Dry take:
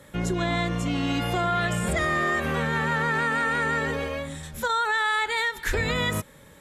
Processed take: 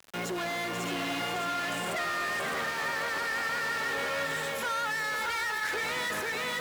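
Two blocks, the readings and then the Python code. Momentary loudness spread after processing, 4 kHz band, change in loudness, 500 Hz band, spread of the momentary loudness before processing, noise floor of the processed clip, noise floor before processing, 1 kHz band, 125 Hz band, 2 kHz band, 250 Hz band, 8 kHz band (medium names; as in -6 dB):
2 LU, -2.5 dB, -5.5 dB, -6.0 dB, 6 LU, -34 dBFS, -51 dBFS, -5.5 dB, -16.5 dB, -4.0 dB, -11.0 dB, -1.5 dB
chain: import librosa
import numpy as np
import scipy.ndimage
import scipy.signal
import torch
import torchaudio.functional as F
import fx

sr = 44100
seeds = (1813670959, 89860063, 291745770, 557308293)

p1 = fx.leveller(x, sr, passes=2)
p2 = p1 + 10.0 ** (-8.5 / 20.0) * np.pad(p1, (int(487 * sr / 1000.0), 0))[:len(p1)]
p3 = fx.rider(p2, sr, range_db=10, speed_s=0.5)
p4 = fx.weighting(p3, sr, curve='A')
p5 = fx.quant_dither(p4, sr, seeds[0], bits=6, dither='none')
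p6 = fx.tube_stage(p5, sr, drive_db=30.0, bias=0.35)
p7 = fx.highpass(p6, sr, hz=110.0, slope=6)
p8 = fx.high_shelf(p7, sr, hz=3800.0, db=-5.5)
y = p8 + fx.echo_single(p8, sr, ms=608, db=-6.5, dry=0)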